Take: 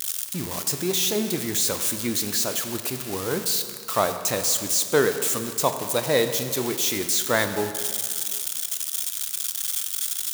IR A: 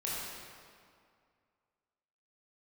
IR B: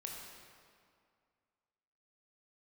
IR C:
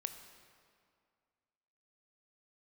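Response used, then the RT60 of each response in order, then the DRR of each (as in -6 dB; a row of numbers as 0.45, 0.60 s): C; 2.2, 2.2, 2.2 s; -7.5, -1.5, 7.5 dB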